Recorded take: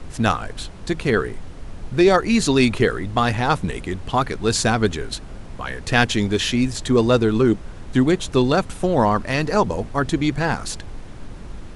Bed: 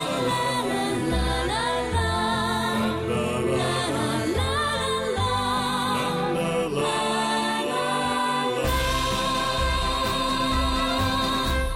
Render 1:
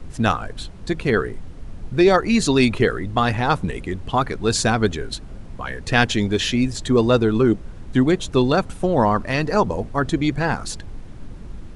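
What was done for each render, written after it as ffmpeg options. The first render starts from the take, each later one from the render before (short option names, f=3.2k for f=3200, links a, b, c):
-af "afftdn=nr=6:nf=-36"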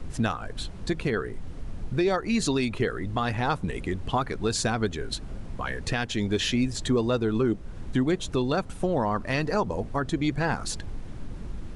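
-af "acompressor=threshold=-30dB:ratio=1.5,alimiter=limit=-15dB:level=0:latency=1:release=347"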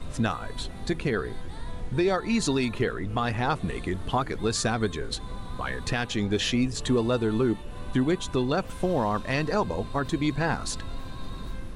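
-filter_complex "[1:a]volume=-21.5dB[a];[0:a][a]amix=inputs=2:normalize=0"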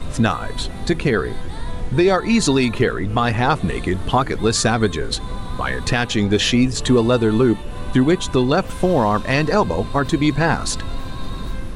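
-af "volume=9dB"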